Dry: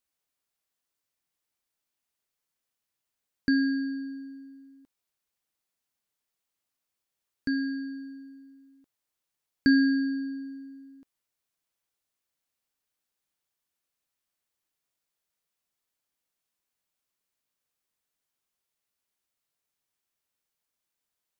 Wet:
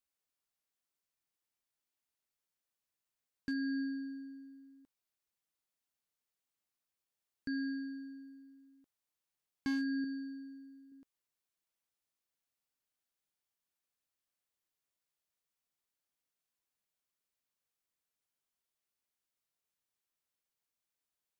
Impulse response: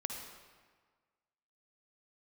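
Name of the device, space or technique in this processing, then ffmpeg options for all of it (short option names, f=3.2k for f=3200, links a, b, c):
clipper into limiter: -filter_complex "[0:a]asoftclip=type=hard:threshold=-17dB,alimiter=limit=-24dB:level=0:latency=1:release=130,asettb=1/sr,asplit=3[a][b][c];[a]atrim=end=10.044[d];[b]atrim=start=10.04:end=10.92,asetpts=PTS-STARTPTS,afade=t=in:d=0.004:c=qsin,afade=t=out:st=0.876:d=0.004:c=qsin,equalizer=f=670:t=o:w=2.1:g=-10[e];[c]atrim=start=10.916[f];[d][e]acrossfade=d=0.004:c1=hsin:c2=qsin[g];[g][f]acrossfade=d=0.004:c1=qsin:c2=hsin,volume=-6dB"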